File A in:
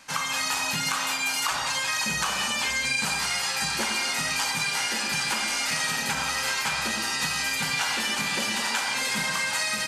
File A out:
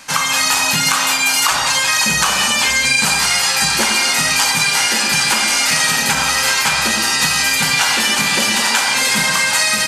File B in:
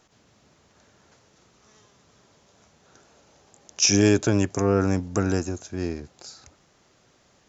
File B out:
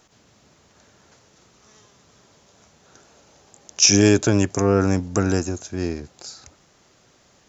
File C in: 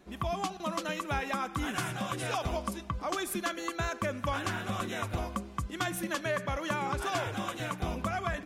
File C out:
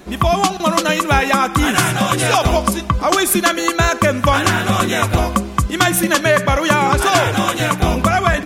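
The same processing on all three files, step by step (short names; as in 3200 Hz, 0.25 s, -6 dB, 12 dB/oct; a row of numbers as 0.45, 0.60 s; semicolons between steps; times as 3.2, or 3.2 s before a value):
high shelf 5600 Hz +4 dB; normalise peaks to -2 dBFS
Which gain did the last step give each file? +11.0, +3.0, +18.0 dB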